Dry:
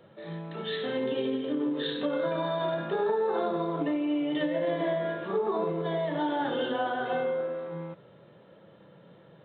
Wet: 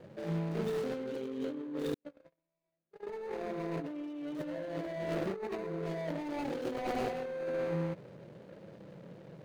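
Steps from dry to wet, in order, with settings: median filter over 41 samples; 1.94–3.07 gate -25 dBFS, range -59 dB; negative-ratio compressor -37 dBFS, ratio -1

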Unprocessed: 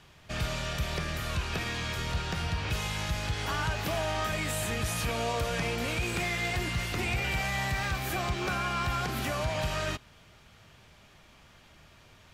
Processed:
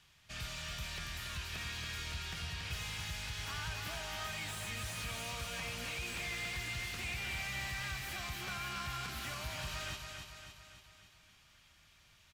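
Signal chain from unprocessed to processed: passive tone stack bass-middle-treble 5-5-5; feedback echo 0.281 s, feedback 55%, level -6 dB; slew limiter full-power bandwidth 34 Hz; gain +1.5 dB

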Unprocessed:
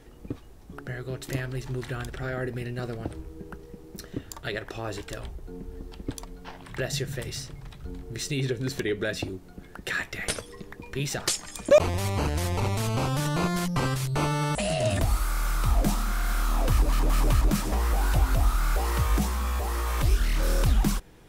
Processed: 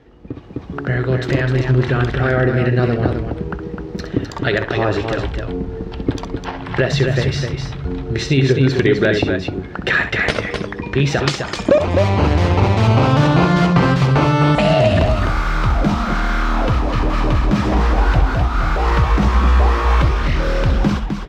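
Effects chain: compressor, threshold -26 dBFS, peak gain reduction 13 dB; HPF 55 Hz; air absorption 210 m; loudspeakers at several distances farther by 22 m -10 dB, 88 m -6 dB; AGC gain up to 12.5 dB; gain +4 dB

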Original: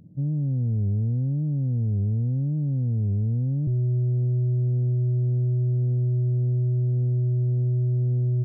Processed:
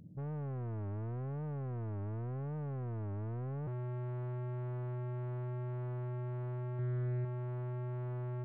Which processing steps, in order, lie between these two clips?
soft clip -34.5 dBFS, distortion -10 dB; 6.74–7.25 doubler 49 ms -3 dB; gain -4 dB

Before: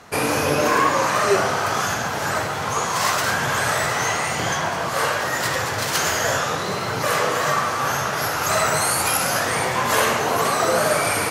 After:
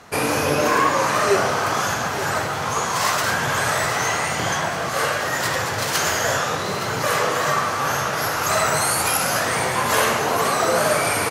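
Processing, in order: 4.66–5.28 notch 960 Hz, Q 8.5; on a send: echo 0.867 s -13 dB

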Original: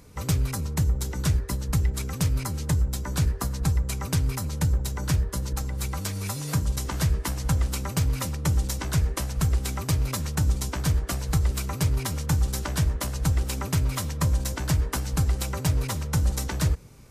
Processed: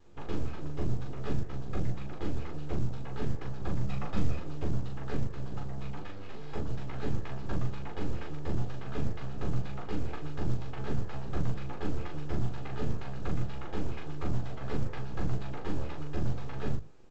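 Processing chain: minimum comb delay 2.4 ms; notches 50/100 Hz; 3.83–4.38 comb 1.6 ms, depth 97%; notch 2100 Hz, Q 5; full-wave rectifier; air absorption 410 m; early reflections 14 ms -5.5 dB, 40 ms -3.5 dB; gain -5 dB; A-law 128 kbps 16000 Hz

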